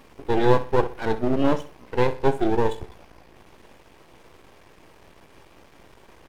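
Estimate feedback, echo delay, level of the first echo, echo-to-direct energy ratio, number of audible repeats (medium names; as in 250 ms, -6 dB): 35%, 63 ms, -14.5 dB, -14.0 dB, 3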